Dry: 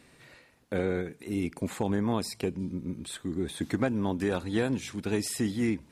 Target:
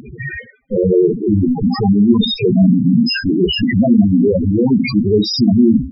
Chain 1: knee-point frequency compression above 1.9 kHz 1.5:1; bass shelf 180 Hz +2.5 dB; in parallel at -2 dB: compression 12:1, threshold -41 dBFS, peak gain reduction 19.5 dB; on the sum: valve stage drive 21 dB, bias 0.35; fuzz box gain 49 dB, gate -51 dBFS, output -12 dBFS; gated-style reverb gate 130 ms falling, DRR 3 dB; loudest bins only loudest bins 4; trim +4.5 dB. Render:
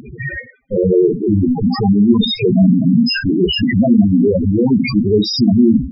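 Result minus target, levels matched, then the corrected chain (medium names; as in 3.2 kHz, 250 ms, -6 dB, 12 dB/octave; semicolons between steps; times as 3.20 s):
compression: peak gain reduction -9.5 dB
knee-point frequency compression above 1.9 kHz 1.5:1; bass shelf 180 Hz +2.5 dB; in parallel at -2 dB: compression 12:1, threshold -51.5 dBFS, peak gain reduction 29.5 dB; on the sum: valve stage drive 21 dB, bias 0.35; fuzz box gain 49 dB, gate -51 dBFS, output -12 dBFS; gated-style reverb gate 130 ms falling, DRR 3 dB; loudest bins only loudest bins 4; trim +4.5 dB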